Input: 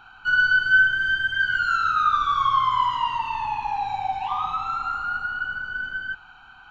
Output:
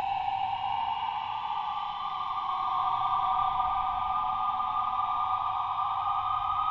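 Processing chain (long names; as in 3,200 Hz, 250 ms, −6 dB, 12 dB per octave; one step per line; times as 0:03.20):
treble cut that deepens with the level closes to 1,500 Hz, closed at −17.5 dBFS
extreme stretch with random phases 46×, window 0.05 s, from 0:04.25
level −3.5 dB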